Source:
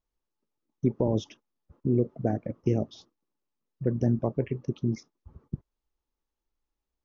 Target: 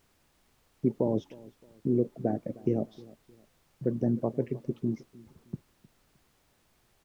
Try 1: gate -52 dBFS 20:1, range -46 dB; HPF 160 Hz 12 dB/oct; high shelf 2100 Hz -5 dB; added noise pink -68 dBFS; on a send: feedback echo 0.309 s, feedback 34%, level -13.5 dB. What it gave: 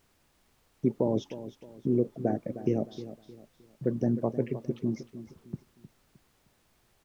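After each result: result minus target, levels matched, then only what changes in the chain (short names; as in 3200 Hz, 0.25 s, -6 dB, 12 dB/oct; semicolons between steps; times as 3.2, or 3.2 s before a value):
4000 Hz band +6.5 dB; echo-to-direct +8 dB
change: high shelf 2100 Hz -15.5 dB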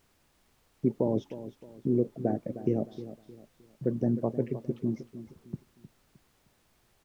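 echo-to-direct +8 dB
change: feedback echo 0.309 s, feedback 34%, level -21.5 dB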